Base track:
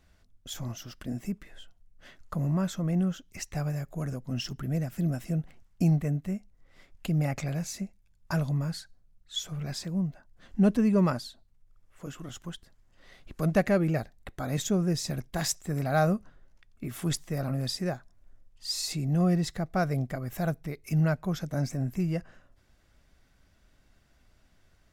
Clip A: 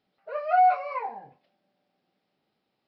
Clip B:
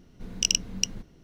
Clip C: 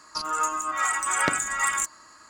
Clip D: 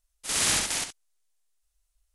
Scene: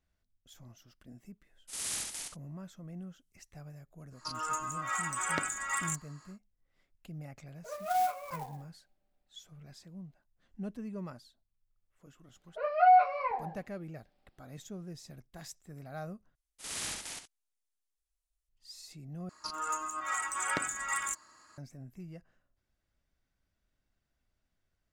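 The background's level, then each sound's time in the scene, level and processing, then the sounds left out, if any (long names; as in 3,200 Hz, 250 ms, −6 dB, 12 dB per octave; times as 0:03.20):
base track −17.5 dB
0:01.44: mix in D −17 dB + high-shelf EQ 6,100 Hz +10 dB
0:04.10: mix in C −9 dB, fades 0.10 s
0:07.37: mix in A −10 dB + converter with an unsteady clock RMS 0.032 ms
0:12.29: mix in A −1.5 dB
0:16.35: overwrite with D −13.5 dB
0:19.29: overwrite with C −9 dB
not used: B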